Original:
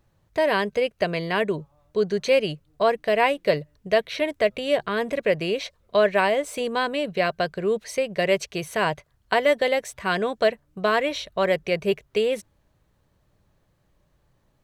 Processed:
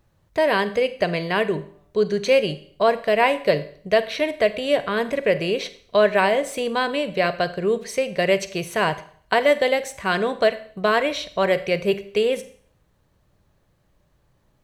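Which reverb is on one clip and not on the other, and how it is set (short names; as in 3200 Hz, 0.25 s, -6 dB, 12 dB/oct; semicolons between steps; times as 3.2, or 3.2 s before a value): Schroeder reverb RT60 0.54 s, combs from 31 ms, DRR 12.5 dB; gain +2 dB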